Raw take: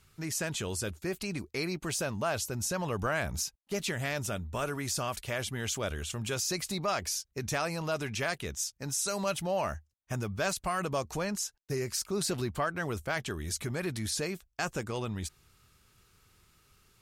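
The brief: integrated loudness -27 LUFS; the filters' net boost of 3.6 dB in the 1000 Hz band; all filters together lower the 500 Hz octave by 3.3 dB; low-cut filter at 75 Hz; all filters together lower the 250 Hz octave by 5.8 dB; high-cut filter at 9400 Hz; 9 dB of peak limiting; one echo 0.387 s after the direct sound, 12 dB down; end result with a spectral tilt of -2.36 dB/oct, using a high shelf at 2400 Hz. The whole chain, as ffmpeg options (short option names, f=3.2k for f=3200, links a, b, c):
-af "highpass=75,lowpass=9.4k,equalizer=f=250:t=o:g=-8,equalizer=f=500:t=o:g=-4.5,equalizer=f=1k:t=o:g=5.5,highshelf=f=2.4k:g=4.5,alimiter=limit=-22.5dB:level=0:latency=1,aecho=1:1:387:0.251,volume=7dB"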